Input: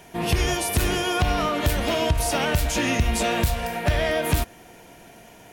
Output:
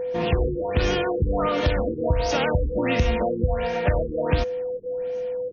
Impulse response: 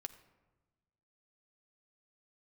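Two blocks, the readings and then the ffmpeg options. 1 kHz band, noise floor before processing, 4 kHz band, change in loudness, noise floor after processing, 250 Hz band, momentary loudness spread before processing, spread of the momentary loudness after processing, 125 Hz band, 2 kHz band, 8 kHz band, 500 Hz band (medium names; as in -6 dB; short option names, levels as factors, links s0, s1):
-2.0 dB, -48 dBFS, -6.0 dB, -1.0 dB, -30 dBFS, 0.0 dB, 3 LU, 6 LU, 0.0 dB, -4.0 dB, -15.0 dB, +4.0 dB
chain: -af "aeval=exprs='val(0)+0.0562*sin(2*PI*500*n/s)':c=same,afftfilt=real='re*lt(b*sr/1024,460*pow(6800/460,0.5+0.5*sin(2*PI*1.4*pts/sr)))':imag='im*lt(b*sr/1024,460*pow(6800/460,0.5+0.5*sin(2*PI*1.4*pts/sr)))':win_size=1024:overlap=0.75"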